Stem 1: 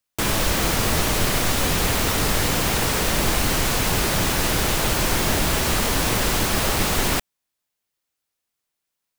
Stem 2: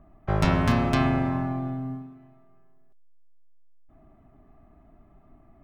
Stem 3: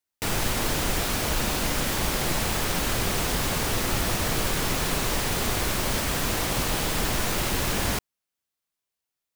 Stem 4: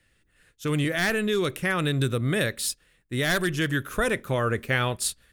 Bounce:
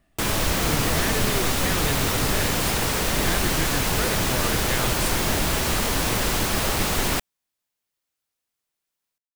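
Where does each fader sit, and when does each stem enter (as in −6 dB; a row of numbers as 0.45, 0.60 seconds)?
−2.0 dB, −12.0 dB, muted, −6.0 dB; 0.00 s, 0.00 s, muted, 0.00 s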